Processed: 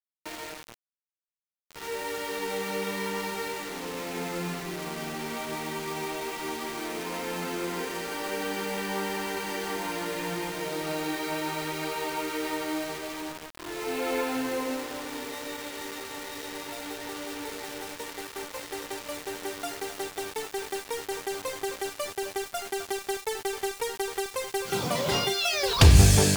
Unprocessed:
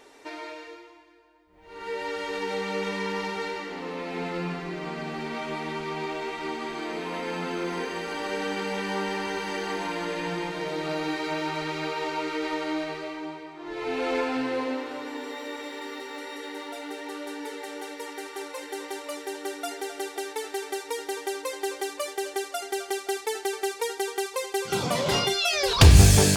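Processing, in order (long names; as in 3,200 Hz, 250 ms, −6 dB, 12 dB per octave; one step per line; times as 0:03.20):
bit-depth reduction 6 bits, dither none
level −2 dB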